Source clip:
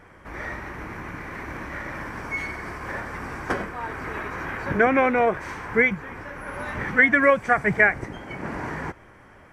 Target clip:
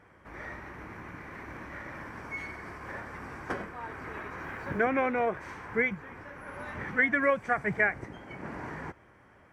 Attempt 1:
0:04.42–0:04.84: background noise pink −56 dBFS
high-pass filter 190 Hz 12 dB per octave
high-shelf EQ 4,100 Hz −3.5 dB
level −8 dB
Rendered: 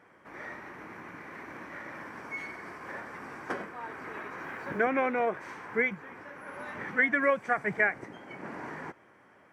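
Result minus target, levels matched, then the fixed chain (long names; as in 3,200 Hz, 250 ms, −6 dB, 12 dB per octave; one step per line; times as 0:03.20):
125 Hz band −6.0 dB
0:04.42–0:04.84: background noise pink −56 dBFS
high-pass filter 51 Hz 12 dB per octave
high-shelf EQ 4,100 Hz −3.5 dB
level −8 dB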